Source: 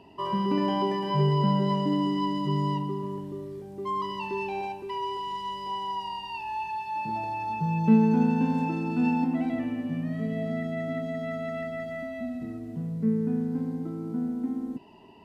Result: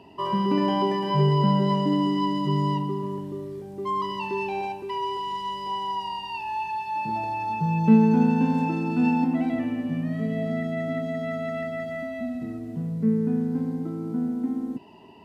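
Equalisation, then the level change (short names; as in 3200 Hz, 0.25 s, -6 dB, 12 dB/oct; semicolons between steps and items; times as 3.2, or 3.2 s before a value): HPF 59 Hz; +3.0 dB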